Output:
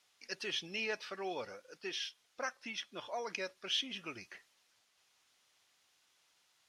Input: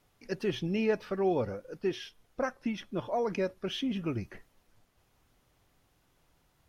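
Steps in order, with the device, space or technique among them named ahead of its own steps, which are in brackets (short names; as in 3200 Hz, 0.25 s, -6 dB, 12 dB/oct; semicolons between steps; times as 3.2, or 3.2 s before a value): piezo pickup straight into a mixer (LPF 5200 Hz 12 dB/oct; differentiator); gain +11.5 dB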